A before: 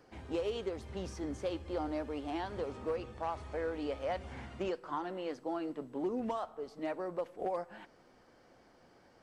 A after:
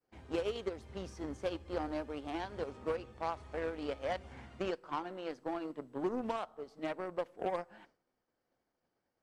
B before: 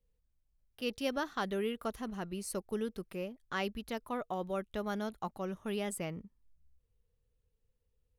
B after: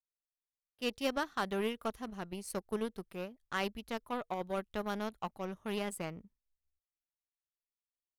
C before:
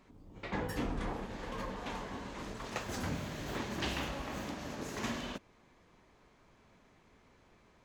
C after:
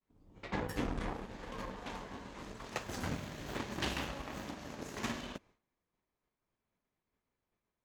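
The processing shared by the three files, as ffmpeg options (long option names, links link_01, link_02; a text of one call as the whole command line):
ffmpeg -i in.wav -af "aeval=exprs='0.0841*(cos(1*acos(clip(val(0)/0.0841,-1,1)))-cos(1*PI/2))+0.00668*(cos(7*acos(clip(val(0)/0.0841,-1,1)))-cos(7*PI/2))':channel_layout=same,agate=range=-33dB:threshold=-59dB:ratio=3:detection=peak,volume=1dB" out.wav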